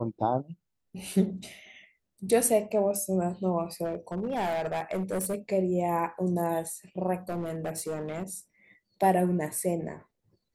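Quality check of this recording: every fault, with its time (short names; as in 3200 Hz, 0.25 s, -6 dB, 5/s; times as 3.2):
3.84–5.35 clipped -26 dBFS
7.29–8.34 clipped -28 dBFS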